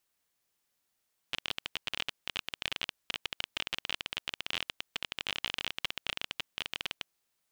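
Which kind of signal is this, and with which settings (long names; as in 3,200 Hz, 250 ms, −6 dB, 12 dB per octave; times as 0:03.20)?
Geiger counter clicks 25 per second −15.5 dBFS 5.79 s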